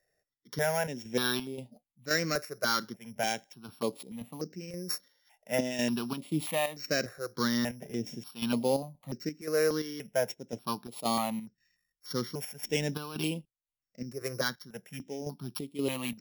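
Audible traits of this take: a buzz of ramps at a fixed pitch in blocks of 8 samples; chopped level 1.9 Hz, depth 60%, duty 65%; notches that jump at a steady rate 3.4 Hz 880–5700 Hz

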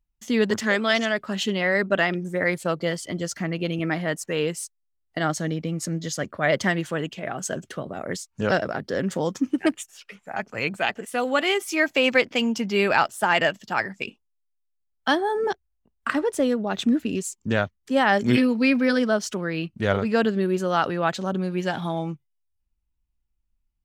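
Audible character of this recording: noise floor -74 dBFS; spectral tilt -4.5 dB/oct

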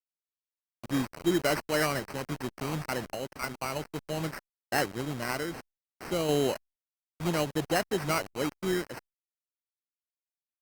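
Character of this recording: a quantiser's noise floor 6-bit, dither none; random-step tremolo; aliases and images of a low sample rate 3500 Hz, jitter 0%; Opus

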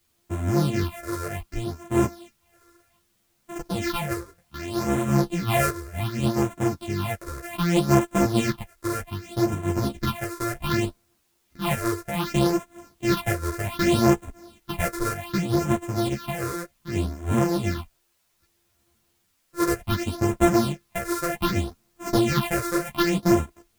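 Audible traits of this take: a buzz of ramps at a fixed pitch in blocks of 128 samples; phasing stages 6, 0.65 Hz, lowest notch 200–4600 Hz; a quantiser's noise floor 12-bit, dither triangular; a shimmering, thickened sound

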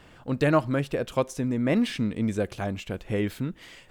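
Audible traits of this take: noise floor -53 dBFS; spectral tilt -6.0 dB/oct

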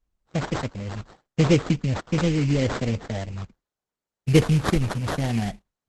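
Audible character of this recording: phasing stages 2, 0.77 Hz, lowest notch 710–2800 Hz; aliases and images of a low sample rate 2600 Hz, jitter 20%; Opus

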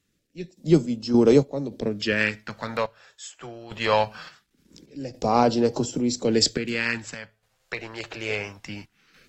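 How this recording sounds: a quantiser's noise floor 12-bit, dither none; random-step tremolo, depth 80%; phasing stages 2, 0.22 Hz, lowest notch 230–1800 Hz; AAC

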